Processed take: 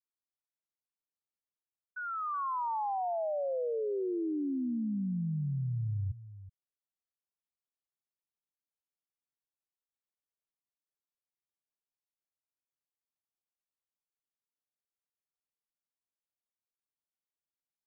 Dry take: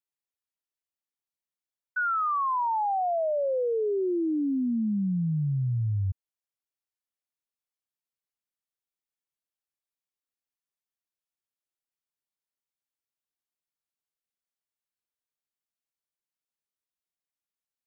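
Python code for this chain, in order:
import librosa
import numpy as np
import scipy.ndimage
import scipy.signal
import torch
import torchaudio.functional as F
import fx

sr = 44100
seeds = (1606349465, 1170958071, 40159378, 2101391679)

y = scipy.signal.sosfilt(scipy.signal.butter(4, 1300.0, 'lowpass', fs=sr, output='sos'), x)
y = y + 10.0 ** (-15.0 / 20.0) * np.pad(y, (int(375 * sr / 1000.0), 0))[:len(y)]
y = y * librosa.db_to_amplitude(-6.5)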